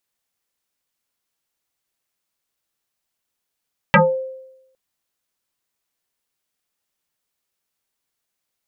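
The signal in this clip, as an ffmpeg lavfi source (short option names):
-f lavfi -i "aevalsrc='0.501*pow(10,-3*t/0.89)*sin(2*PI*524*t+6.7*pow(10,-3*t/0.26)*sin(2*PI*0.69*524*t))':d=0.81:s=44100"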